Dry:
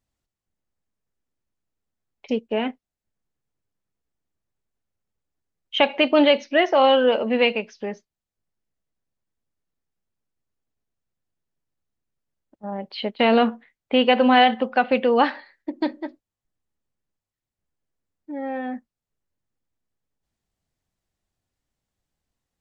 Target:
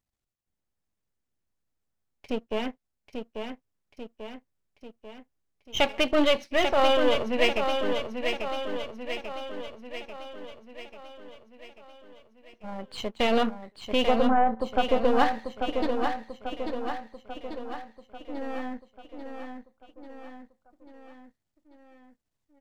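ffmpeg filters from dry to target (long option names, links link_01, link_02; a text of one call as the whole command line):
ffmpeg -i in.wav -filter_complex "[0:a]aeval=exprs='if(lt(val(0),0),0.251*val(0),val(0))':channel_layout=same,asettb=1/sr,asplit=3[link_01][link_02][link_03];[link_01]atrim=end=14.054[link_04];[link_02]atrim=start=14.05:end=15.05,asetpts=PTS-STARTPTS,afade=type=in:duration=0.004:curve=qsin,afade=type=out:start_time=0.996:duration=0.004:curve=qsin,lowpass=frequency=1300:width=0.5412,lowpass=frequency=1300:width=1.3066[link_05];[link_03]atrim=start=15.046[link_06];[link_04][link_05]acrossfade=duration=0.004:curve1=hsin:curve2=qsin[link_07];[link_07][link_06]acrossfade=duration=0.004:curve1=qsin:curve2=hsin,asplit=2[link_08][link_09];[link_09]aecho=0:1:841|1682|2523|3364|4205|5046|5887:0.501|0.286|0.163|0.0928|0.0529|0.0302|0.0172[link_10];[link_08][link_10]amix=inputs=2:normalize=0,volume=-2dB" out.wav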